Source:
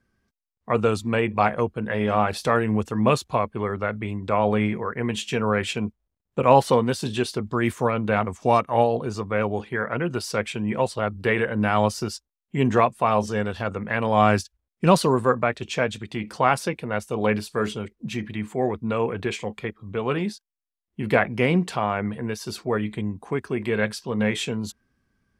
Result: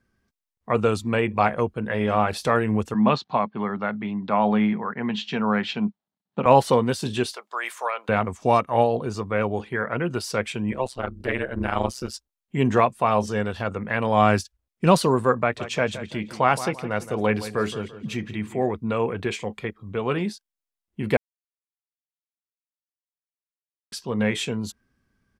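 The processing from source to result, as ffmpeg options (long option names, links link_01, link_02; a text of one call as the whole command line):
ffmpeg -i in.wav -filter_complex "[0:a]asettb=1/sr,asplit=3[link_01][link_02][link_03];[link_01]atrim=end=2.944[link_04];[link_02]atrim=start=2.94:end=6.46,asetpts=PTS-STARTPTS,afade=type=in:duration=0.004:curve=qsin,afade=type=out:start_time=3.516:duration=0.004:curve=qsin,highpass=frequency=150:width=0.5412,highpass=frequency=150:width=1.3066,equalizer=frequency=200:width_type=q:width=4:gain=6,equalizer=frequency=350:width_type=q:width=4:gain=-5,equalizer=frequency=490:width_type=q:width=4:gain=-6,equalizer=frequency=830:width_type=q:width=4:gain=5,equalizer=frequency=2400:width_type=q:width=4:gain=-4,equalizer=frequency=4100:width_type=q:width=4:gain=3,lowpass=frequency=4700:width=0.5412,lowpass=frequency=4700:width=1.3066[link_05];[link_03]atrim=start=6.456[link_06];[link_04][link_05]acrossfade=duration=0.004:curve1=hsin:curve2=qsin[link_07];[link_07][link_06]acrossfade=duration=0.004:curve1=qsin:curve2=hsin,asettb=1/sr,asplit=3[link_08][link_09][link_10];[link_08]atrim=end=7.324[link_11];[link_09]atrim=start=7.32:end=8.09,asetpts=PTS-STARTPTS,afade=type=in:duration=0.004:curve=qsin,afade=type=out:start_time=0.766:duration=0.004:curve=qsin,highpass=frequency=640:width=0.5412,highpass=frequency=640:width=1.3066[link_12];[link_10]atrim=start=8.086[link_13];[link_11][link_12]acrossfade=duration=0.004:curve1=hsin:curve2=qsin[link_14];[link_14][link_13]acrossfade=duration=0.004:curve1=qsin:curve2=hsin,asettb=1/sr,asplit=3[link_15][link_16][link_17];[link_15]atrim=end=10.714[link_18];[link_16]atrim=start=10.71:end=12.14,asetpts=PTS-STARTPTS,afade=type=in:duration=0.004:curve=qsin,afade=type=out:start_time=1.426:duration=0.004:curve=qsin,tremolo=f=130:d=0.974[link_19];[link_17]atrim=start=12.136[link_20];[link_18][link_19]acrossfade=duration=0.004:curve1=hsin:curve2=qsin[link_21];[link_21][link_20]acrossfade=duration=0.004:curve1=qsin:curve2=hsin,asplit=3[link_22][link_23][link_24];[link_22]afade=type=out:start_time=15.56:duration=0.02[link_25];[link_23]asplit=2[link_26][link_27];[link_27]adelay=169,lowpass=frequency=4400:poles=1,volume=-13dB,asplit=2[link_28][link_29];[link_29]adelay=169,lowpass=frequency=4400:poles=1,volume=0.37,asplit=2[link_30][link_31];[link_31]adelay=169,lowpass=frequency=4400:poles=1,volume=0.37,asplit=2[link_32][link_33];[link_33]adelay=169,lowpass=frequency=4400:poles=1,volume=0.37[link_34];[link_26][link_28][link_30][link_32][link_34]amix=inputs=5:normalize=0,afade=type=in:start_time=15.56:duration=0.02,afade=type=out:start_time=18.65:duration=0.02[link_35];[link_24]afade=type=in:start_time=18.65:duration=0.02[link_36];[link_25][link_35][link_36]amix=inputs=3:normalize=0,asplit=3[link_37][link_38][link_39];[link_37]atrim=end=21.17,asetpts=PTS-STARTPTS,afade=type=out:start_time=21.166:duration=0.004:curve=hsin[link_40];[link_38]atrim=start=21.17:end=23.92,asetpts=PTS-STARTPTS,volume=0[link_41];[link_39]atrim=start=23.92,asetpts=PTS-STARTPTS,afade=type=in:duration=0.004:curve=hsin[link_42];[link_40][link_41][link_42]concat=n=3:v=0:a=1" out.wav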